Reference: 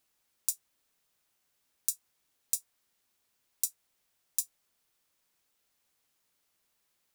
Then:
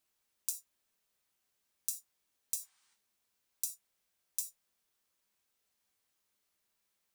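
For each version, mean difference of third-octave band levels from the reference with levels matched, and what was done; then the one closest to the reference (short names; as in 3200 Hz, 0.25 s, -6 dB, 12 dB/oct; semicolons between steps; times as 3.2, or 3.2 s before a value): 2.0 dB: spectral gain 2.62–2.94, 750–9900 Hz +11 dB; non-linear reverb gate 0.11 s falling, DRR 4 dB; gain -6 dB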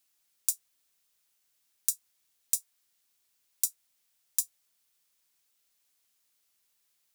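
4.0 dB: high shelf 2000 Hz +10.5 dB; in parallel at 0 dB: overloaded stage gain -3.5 dB; on the sum: gain -13 dB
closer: first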